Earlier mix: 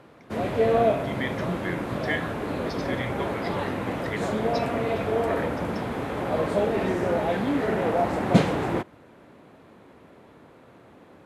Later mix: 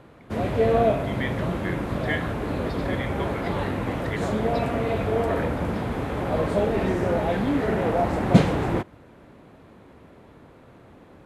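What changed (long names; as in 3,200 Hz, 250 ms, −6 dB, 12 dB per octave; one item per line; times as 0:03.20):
speech: add Butterworth low-pass 4,300 Hz
background: remove high-pass filter 180 Hz 6 dB per octave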